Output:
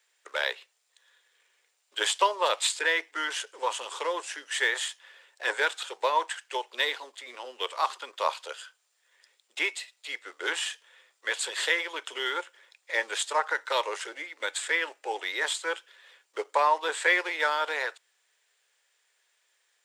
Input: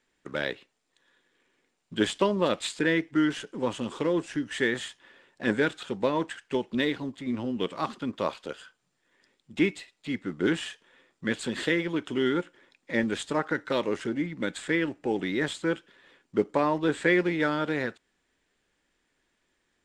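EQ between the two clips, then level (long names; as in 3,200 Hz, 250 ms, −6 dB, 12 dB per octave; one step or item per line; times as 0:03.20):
Butterworth high-pass 440 Hz 36 dB per octave
spectral tilt +3 dB per octave
dynamic equaliser 940 Hz, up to +8 dB, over −48 dBFS, Q 2.6
0.0 dB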